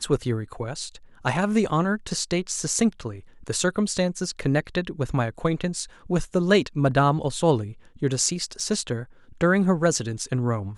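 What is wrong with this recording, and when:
0:08.60: drop-out 3.4 ms

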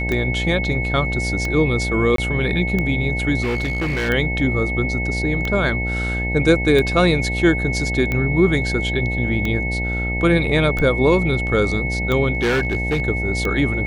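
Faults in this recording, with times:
mains buzz 60 Hz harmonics 15 −24 dBFS
scratch tick 45 rpm −10 dBFS
whistle 2,200 Hz −24 dBFS
0:02.16–0:02.18: drop-out 23 ms
0:03.42–0:04.10: clipping −18 dBFS
0:12.35–0:13.00: clipping −15 dBFS

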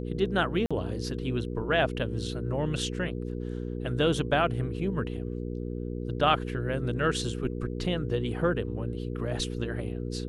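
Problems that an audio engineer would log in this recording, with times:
mains hum 60 Hz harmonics 8 −34 dBFS
0:00.66–0:00.71: drop-out 46 ms

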